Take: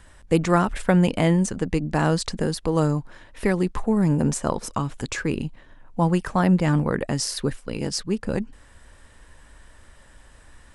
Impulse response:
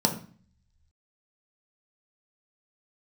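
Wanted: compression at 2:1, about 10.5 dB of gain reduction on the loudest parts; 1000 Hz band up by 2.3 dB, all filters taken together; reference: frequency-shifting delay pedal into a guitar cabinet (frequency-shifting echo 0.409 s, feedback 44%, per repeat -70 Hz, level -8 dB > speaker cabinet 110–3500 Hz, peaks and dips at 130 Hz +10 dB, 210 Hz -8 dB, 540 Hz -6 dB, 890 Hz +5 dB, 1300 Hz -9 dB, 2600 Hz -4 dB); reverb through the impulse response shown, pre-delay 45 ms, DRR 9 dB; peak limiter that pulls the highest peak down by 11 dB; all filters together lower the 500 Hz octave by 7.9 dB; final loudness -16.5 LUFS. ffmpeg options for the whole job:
-filter_complex "[0:a]equalizer=f=500:t=o:g=-9,equalizer=f=1k:t=o:g=5,acompressor=threshold=-35dB:ratio=2,alimiter=level_in=2.5dB:limit=-24dB:level=0:latency=1,volume=-2.5dB,asplit=2[a][b];[1:a]atrim=start_sample=2205,adelay=45[c];[b][c]afir=irnorm=-1:irlink=0,volume=-20.5dB[d];[a][d]amix=inputs=2:normalize=0,asplit=6[e][f][g][h][i][j];[f]adelay=409,afreqshift=-70,volume=-8dB[k];[g]adelay=818,afreqshift=-140,volume=-15.1dB[l];[h]adelay=1227,afreqshift=-210,volume=-22.3dB[m];[i]adelay=1636,afreqshift=-280,volume=-29.4dB[n];[j]adelay=2045,afreqshift=-350,volume=-36.5dB[o];[e][k][l][m][n][o]amix=inputs=6:normalize=0,highpass=110,equalizer=f=130:t=q:w=4:g=10,equalizer=f=210:t=q:w=4:g=-8,equalizer=f=540:t=q:w=4:g=-6,equalizer=f=890:t=q:w=4:g=5,equalizer=f=1.3k:t=q:w=4:g=-9,equalizer=f=2.6k:t=q:w=4:g=-4,lowpass=f=3.5k:w=0.5412,lowpass=f=3.5k:w=1.3066,volume=18dB"

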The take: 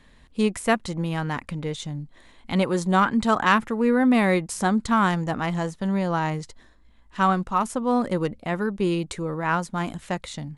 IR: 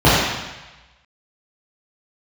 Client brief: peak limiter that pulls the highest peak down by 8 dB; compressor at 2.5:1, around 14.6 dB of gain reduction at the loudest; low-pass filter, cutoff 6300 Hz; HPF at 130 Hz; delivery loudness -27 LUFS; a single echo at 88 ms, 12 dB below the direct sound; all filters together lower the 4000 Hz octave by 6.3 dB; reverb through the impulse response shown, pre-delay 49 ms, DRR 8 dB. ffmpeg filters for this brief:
-filter_complex "[0:a]highpass=130,lowpass=6.3k,equalizer=f=4k:t=o:g=-8.5,acompressor=threshold=-39dB:ratio=2.5,alimiter=level_in=5dB:limit=-24dB:level=0:latency=1,volume=-5dB,aecho=1:1:88:0.251,asplit=2[a][b];[1:a]atrim=start_sample=2205,adelay=49[c];[b][c]afir=irnorm=-1:irlink=0,volume=-36.5dB[d];[a][d]amix=inputs=2:normalize=0,volume=10.5dB"

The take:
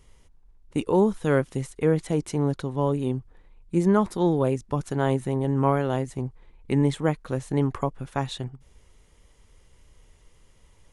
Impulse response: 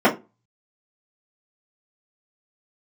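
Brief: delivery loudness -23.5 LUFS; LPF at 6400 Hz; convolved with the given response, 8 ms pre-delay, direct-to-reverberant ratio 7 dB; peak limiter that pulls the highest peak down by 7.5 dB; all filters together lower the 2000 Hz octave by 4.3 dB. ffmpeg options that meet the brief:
-filter_complex "[0:a]lowpass=6.4k,equalizer=f=2k:t=o:g=-6,alimiter=limit=-16dB:level=0:latency=1,asplit=2[a][b];[1:a]atrim=start_sample=2205,adelay=8[c];[b][c]afir=irnorm=-1:irlink=0,volume=-29.5dB[d];[a][d]amix=inputs=2:normalize=0,volume=4dB"

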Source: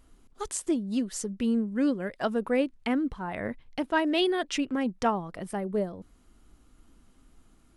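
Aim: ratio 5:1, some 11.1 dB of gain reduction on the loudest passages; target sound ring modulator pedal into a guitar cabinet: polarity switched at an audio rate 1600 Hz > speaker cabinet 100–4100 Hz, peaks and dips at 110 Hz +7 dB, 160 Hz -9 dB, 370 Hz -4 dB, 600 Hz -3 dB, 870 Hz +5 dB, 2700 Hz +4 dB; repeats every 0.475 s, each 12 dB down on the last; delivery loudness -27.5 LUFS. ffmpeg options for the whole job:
-af "acompressor=threshold=-34dB:ratio=5,aecho=1:1:475|950|1425:0.251|0.0628|0.0157,aeval=exprs='val(0)*sgn(sin(2*PI*1600*n/s))':c=same,highpass=100,equalizer=f=110:t=q:w=4:g=7,equalizer=f=160:t=q:w=4:g=-9,equalizer=f=370:t=q:w=4:g=-4,equalizer=f=600:t=q:w=4:g=-3,equalizer=f=870:t=q:w=4:g=5,equalizer=f=2.7k:t=q:w=4:g=4,lowpass=f=4.1k:w=0.5412,lowpass=f=4.1k:w=1.3066,volume=8.5dB"

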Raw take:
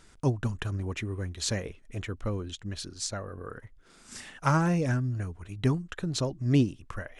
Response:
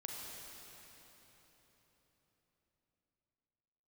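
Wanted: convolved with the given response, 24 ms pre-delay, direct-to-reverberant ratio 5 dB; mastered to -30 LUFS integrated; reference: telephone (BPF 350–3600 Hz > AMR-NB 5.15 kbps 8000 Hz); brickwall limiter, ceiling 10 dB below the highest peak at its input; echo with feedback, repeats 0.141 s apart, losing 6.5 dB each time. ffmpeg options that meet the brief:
-filter_complex "[0:a]alimiter=limit=-21dB:level=0:latency=1,aecho=1:1:141|282|423|564|705|846:0.473|0.222|0.105|0.0491|0.0231|0.0109,asplit=2[a][b];[1:a]atrim=start_sample=2205,adelay=24[c];[b][c]afir=irnorm=-1:irlink=0,volume=-4dB[d];[a][d]amix=inputs=2:normalize=0,highpass=350,lowpass=3.6k,volume=10dB" -ar 8000 -c:a libopencore_amrnb -b:a 5150

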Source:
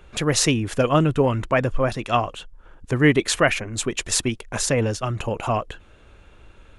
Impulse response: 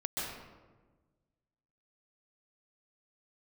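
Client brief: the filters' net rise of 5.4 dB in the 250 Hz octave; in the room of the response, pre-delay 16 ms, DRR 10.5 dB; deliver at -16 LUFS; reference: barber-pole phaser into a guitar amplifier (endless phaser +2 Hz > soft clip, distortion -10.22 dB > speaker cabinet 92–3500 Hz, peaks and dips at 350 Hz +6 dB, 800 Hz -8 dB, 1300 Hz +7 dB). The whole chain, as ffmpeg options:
-filter_complex "[0:a]equalizer=f=250:t=o:g=4.5,asplit=2[a][b];[1:a]atrim=start_sample=2205,adelay=16[c];[b][c]afir=irnorm=-1:irlink=0,volume=-15dB[d];[a][d]amix=inputs=2:normalize=0,asplit=2[e][f];[f]afreqshift=2[g];[e][g]amix=inputs=2:normalize=1,asoftclip=threshold=-19dB,highpass=92,equalizer=f=350:t=q:w=4:g=6,equalizer=f=800:t=q:w=4:g=-8,equalizer=f=1.3k:t=q:w=4:g=7,lowpass=f=3.5k:w=0.5412,lowpass=f=3.5k:w=1.3066,volume=10.5dB"

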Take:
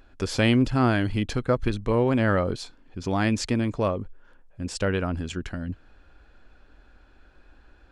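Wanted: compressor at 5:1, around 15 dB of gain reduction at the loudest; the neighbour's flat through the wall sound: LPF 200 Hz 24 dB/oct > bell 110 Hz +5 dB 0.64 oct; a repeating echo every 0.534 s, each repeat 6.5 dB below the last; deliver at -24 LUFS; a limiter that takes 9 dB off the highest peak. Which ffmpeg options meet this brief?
-af "acompressor=threshold=-34dB:ratio=5,alimiter=level_in=5.5dB:limit=-24dB:level=0:latency=1,volume=-5.5dB,lowpass=f=200:w=0.5412,lowpass=f=200:w=1.3066,equalizer=f=110:t=o:w=0.64:g=5,aecho=1:1:534|1068|1602|2136|2670|3204:0.473|0.222|0.105|0.0491|0.0231|0.0109,volume=17dB"

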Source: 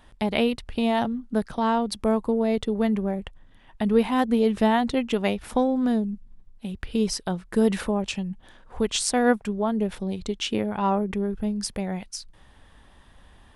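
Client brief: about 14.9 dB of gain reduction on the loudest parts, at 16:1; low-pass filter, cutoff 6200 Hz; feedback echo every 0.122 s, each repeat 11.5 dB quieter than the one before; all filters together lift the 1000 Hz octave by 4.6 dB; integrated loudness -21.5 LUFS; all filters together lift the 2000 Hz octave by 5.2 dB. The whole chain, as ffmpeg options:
-af "lowpass=6.2k,equalizer=f=1k:t=o:g=5,equalizer=f=2k:t=o:g=5,acompressor=threshold=-28dB:ratio=16,aecho=1:1:122|244|366:0.266|0.0718|0.0194,volume=12dB"

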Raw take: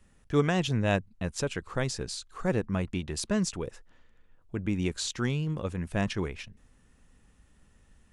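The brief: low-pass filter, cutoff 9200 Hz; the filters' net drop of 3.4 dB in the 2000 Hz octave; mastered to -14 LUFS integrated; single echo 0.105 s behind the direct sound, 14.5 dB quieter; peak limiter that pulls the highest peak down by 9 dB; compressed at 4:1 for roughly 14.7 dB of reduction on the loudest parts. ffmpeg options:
-af "lowpass=9.2k,equalizer=f=2k:t=o:g=-4.5,acompressor=threshold=-37dB:ratio=4,alimiter=level_in=7.5dB:limit=-24dB:level=0:latency=1,volume=-7.5dB,aecho=1:1:105:0.188,volume=29dB"

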